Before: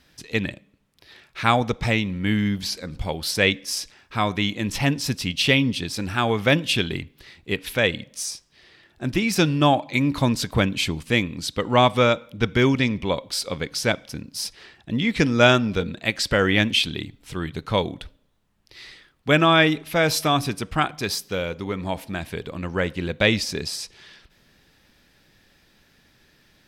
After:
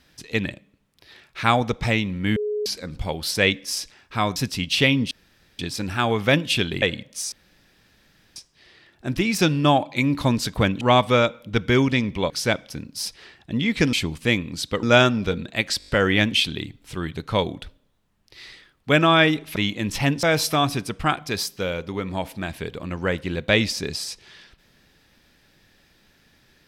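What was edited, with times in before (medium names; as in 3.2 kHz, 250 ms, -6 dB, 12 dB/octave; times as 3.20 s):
2.36–2.66 s: bleep 420 Hz -22.5 dBFS
4.36–5.03 s: move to 19.95 s
5.78 s: insert room tone 0.48 s
7.01–7.83 s: delete
8.33 s: insert room tone 1.04 s
10.78–11.68 s: move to 15.32 s
13.17–13.69 s: delete
16.27 s: stutter 0.02 s, 6 plays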